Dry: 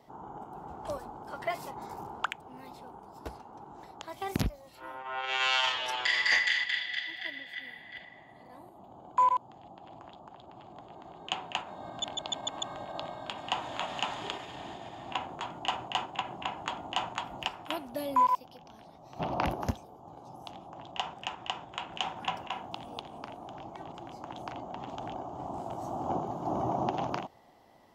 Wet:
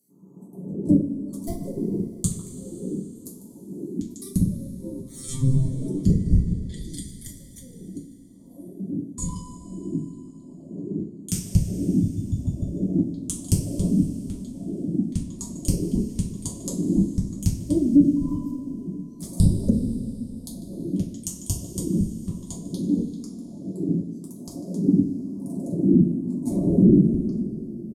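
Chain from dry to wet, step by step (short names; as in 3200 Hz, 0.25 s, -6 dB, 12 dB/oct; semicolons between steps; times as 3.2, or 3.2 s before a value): Wiener smoothing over 25 samples; echo 0.148 s -11 dB; reverb removal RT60 1.9 s; LFO high-pass saw down 1 Hz 270–2400 Hz; HPF 140 Hz 12 dB/oct; sine folder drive 9 dB, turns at -9 dBFS; elliptic band-stop 190–9700 Hz, stop band 60 dB; treble ducked by the level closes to 520 Hz, closed at -46 dBFS; two-slope reverb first 0.31 s, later 3.4 s, from -18 dB, DRR -3.5 dB; maximiser +32 dB; gain -6 dB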